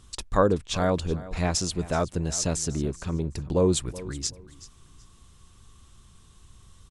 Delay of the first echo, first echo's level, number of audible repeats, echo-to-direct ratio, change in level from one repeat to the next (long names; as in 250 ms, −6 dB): 377 ms, −17.5 dB, 2, −17.5 dB, −13.0 dB